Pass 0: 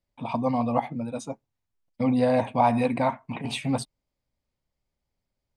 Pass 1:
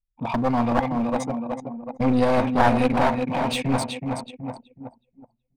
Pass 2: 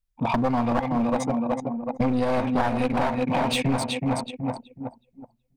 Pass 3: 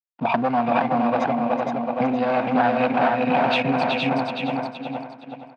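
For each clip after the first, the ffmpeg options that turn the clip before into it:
ffmpeg -i in.wav -af "aecho=1:1:372|744|1116|1488|1860|2232|2604:0.447|0.246|0.135|0.0743|0.0409|0.0225|0.0124,anlmdn=1,aeval=exprs='clip(val(0),-1,0.0398)':channel_layout=same,volume=5dB" out.wav
ffmpeg -i in.wav -af "acompressor=threshold=-24dB:ratio=6,volume=4.5dB" out.wav
ffmpeg -i in.wav -filter_complex "[0:a]aeval=exprs='sgn(val(0))*max(abs(val(0))-0.00398,0)':channel_layout=same,highpass=frequency=140:width=0.5412,highpass=frequency=140:width=1.3066,equalizer=frequency=710:width_type=q:width=4:gain=8,equalizer=frequency=1500:width_type=q:width=4:gain=7,equalizer=frequency=2600:width_type=q:width=4:gain=7,lowpass=frequency=4500:width=0.5412,lowpass=frequency=4500:width=1.3066,asplit=2[link_01][link_02];[link_02]aecho=0:1:467|934|1401|1868:0.668|0.187|0.0524|0.0147[link_03];[link_01][link_03]amix=inputs=2:normalize=0" out.wav

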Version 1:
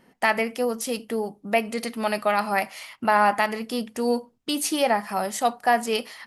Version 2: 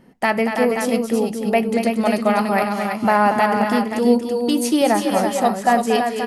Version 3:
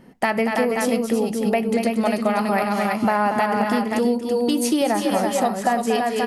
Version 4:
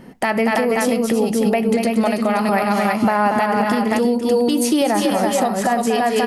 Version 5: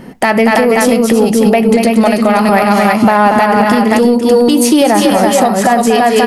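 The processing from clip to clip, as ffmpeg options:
ffmpeg -i in.wav -af "lowshelf=frequency=480:gain=11,aecho=1:1:232|330|522|531:0.398|0.501|0.15|0.355" out.wav
ffmpeg -i in.wav -af "acompressor=threshold=-19dB:ratio=6,volume=2.5dB" out.wav
ffmpeg -i in.wav -af "alimiter=limit=-16dB:level=0:latency=1:release=156,volume=7.5dB" out.wav
ffmpeg -i in.wav -af "acontrast=54,volume=3dB" out.wav

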